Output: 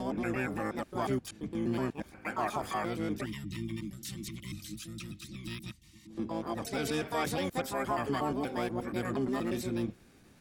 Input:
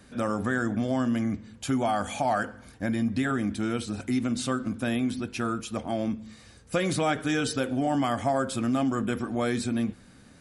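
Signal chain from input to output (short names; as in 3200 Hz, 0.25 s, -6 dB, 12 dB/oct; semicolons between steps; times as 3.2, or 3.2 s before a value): slices in reverse order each 0.119 s, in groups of 8; spectral gain 3.26–6.1, 230–1800 Hz -25 dB; harmoniser -12 st -10 dB, +7 st -2 dB; gain -8.5 dB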